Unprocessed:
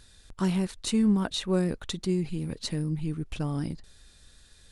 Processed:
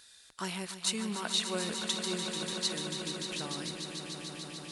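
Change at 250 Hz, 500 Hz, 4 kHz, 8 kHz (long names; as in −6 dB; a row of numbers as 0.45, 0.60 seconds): −11.5, −6.0, +4.5, +5.0 decibels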